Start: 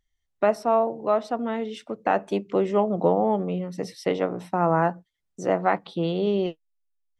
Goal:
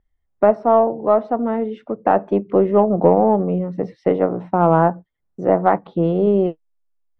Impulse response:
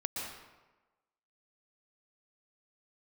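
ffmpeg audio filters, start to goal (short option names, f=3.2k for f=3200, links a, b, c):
-af "lowpass=1.2k,aeval=exprs='0.376*(cos(1*acos(clip(val(0)/0.376,-1,1)))-cos(1*PI/2))+0.00841*(cos(4*acos(clip(val(0)/0.376,-1,1)))-cos(4*PI/2))':c=same,volume=7.5dB"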